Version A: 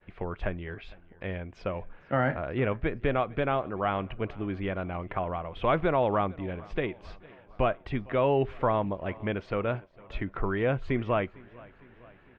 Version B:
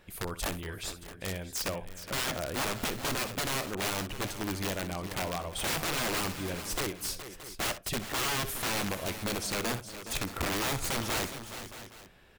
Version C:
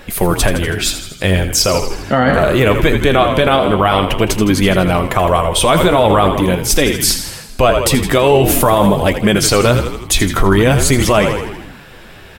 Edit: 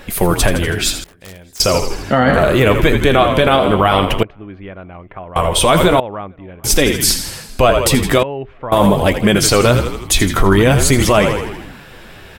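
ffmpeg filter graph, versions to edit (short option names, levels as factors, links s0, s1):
-filter_complex "[0:a]asplit=3[s0][s1][s2];[2:a]asplit=5[s3][s4][s5][s6][s7];[s3]atrim=end=1.042[s8];[1:a]atrim=start=1.038:end=1.602[s9];[s4]atrim=start=1.598:end=4.232[s10];[s0]atrim=start=4.228:end=5.362[s11];[s5]atrim=start=5.358:end=6.002[s12];[s1]atrim=start=5.998:end=6.642[s13];[s6]atrim=start=6.638:end=8.232[s14];[s2]atrim=start=8.228:end=8.722[s15];[s7]atrim=start=8.718[s16];[s8][s9]acrossfade=d=0.004:c1=hsin:c2=hsin[s17];[s17][s10]acrossfade=d=0.004:c1=hsin:c2=hsin[s18];[s18][s11]acrossfade=d=0.004:c1=hsin:c2=hsin[s19];[s19][s12]acrossfade=d=0.004:c1=hsin:c2=hsin[s20];[s20][s13]acrossfade=d=0.004:c1=hsin:c2=hsin[s21];[s21][s14]acrossfade=d=0.004:c1=hsin:c2=hsin[s22];[s22][s15]acrossfade=d=0.004:c1=hsin:c2=hsin[s23];[s23][s16]acrossfade=d=0.004:c1=hsin:c2=hsin"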